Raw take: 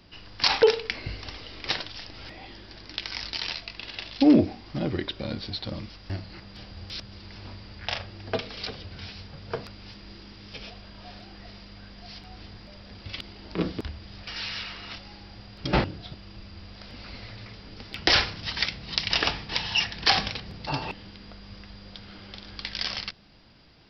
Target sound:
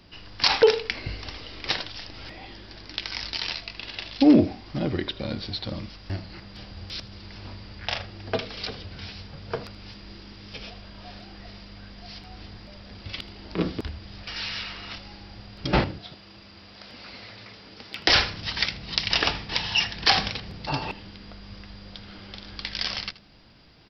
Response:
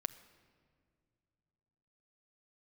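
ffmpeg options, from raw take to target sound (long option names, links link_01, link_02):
-filter_complex "[0:a]asettb=1/sr,asplit=3[link_01][link_02][link_03];[link_01]atrim=end=15.984[link_04];[link_02]atrim=start=15.98:end=18.09,asetpts=PTS-STARTPTS,afade=type=in:duration=0.004:curve=qsin,afade=type=out:start_time=2.106:duration=0.004:curve=qsin,highpass=frequency=300:poles=1[link_05];[link_03]atrim=start=18.086[link_06];[link_04][link_05]acrossfade=duration=0.004:curve1=hsin:curve2=qsin[link_07];[link_07][link_06]acrossfade=duration=0.004:curve1=qsin:curve2=hsin,aecho=1:1:79:0.119,volume=1.5dB"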